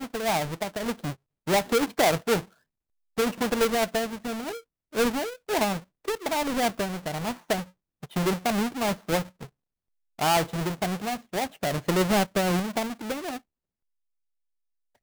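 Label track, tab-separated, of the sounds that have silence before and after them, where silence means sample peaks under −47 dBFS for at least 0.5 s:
3.170000	9.470000	sound
10.190000	13.380000	sound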